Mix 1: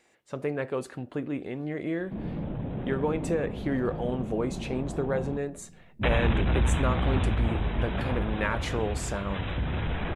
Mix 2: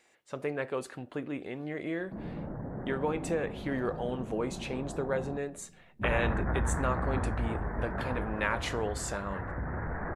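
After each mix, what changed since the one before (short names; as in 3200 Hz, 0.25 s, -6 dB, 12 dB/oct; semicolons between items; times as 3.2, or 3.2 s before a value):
background: add steep low-pass 1900 Hz 72 dB/oct; master: add low shelf 410 Hz -7 dB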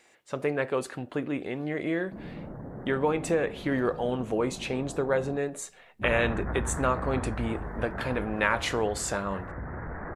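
speech +5.5 dB; background: send -11.0 dB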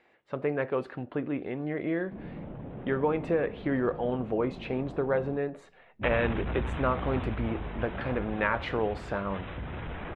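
background: remove steep low-pass 1900 Hz 72 dB/oct; master: add air absorption 390 m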